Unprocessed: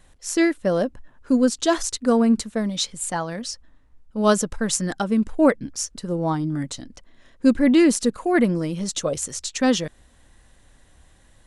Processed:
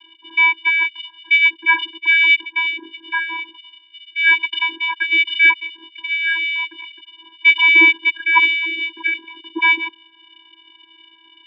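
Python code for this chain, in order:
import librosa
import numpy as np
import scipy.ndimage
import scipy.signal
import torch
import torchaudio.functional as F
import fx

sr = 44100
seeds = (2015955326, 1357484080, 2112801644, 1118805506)

y = fx.freq_invert(x, sr, carrier_hz=2800)
y = fx.vocoder(y, sr, bands=16, carrier='square', carrier_hz=328.0)
y = F.gain(torch.from_numpy(y), 5.0).numpy()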